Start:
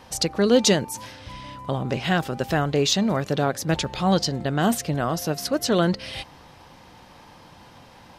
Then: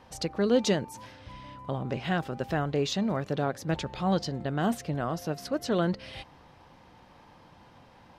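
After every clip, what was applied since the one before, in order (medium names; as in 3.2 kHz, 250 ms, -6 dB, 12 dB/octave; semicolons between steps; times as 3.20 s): treble shelf 4 kHz -10 dB; trim -6 dB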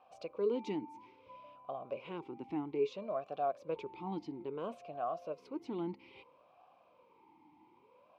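talking filter a-u 0.6 Hz; trim +1.5 dB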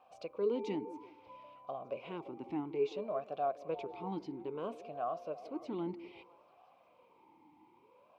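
repeats whose band climbs or falls 171 ms, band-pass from 360 Hz, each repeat 0.7 oct, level -11 dB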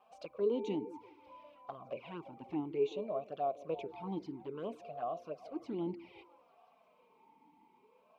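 touch-sensitive flanger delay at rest 5.2 ms, full sweep at -34.5 dBFS; trim +1.5 dB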